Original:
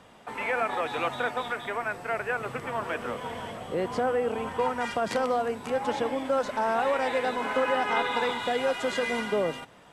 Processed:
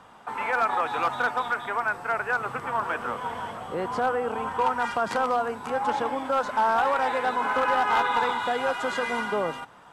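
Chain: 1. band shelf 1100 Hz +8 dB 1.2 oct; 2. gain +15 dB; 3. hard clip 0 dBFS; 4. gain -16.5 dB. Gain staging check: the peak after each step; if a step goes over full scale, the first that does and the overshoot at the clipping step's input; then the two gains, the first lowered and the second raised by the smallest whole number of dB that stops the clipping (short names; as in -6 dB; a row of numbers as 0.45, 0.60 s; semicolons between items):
-8.0, +7.0, 0.0, -16.5 dBFS; step 2, 7.0 dB; step 2 +8 dB, step 4 -9.5 dB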